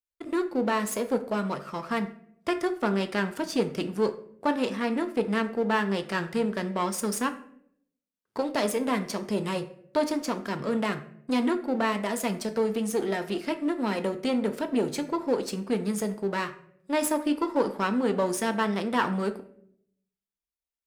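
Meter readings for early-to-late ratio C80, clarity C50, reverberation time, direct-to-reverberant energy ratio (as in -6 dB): 16.5 dB, 13.5 dB, 0.70 s, 7.5 dB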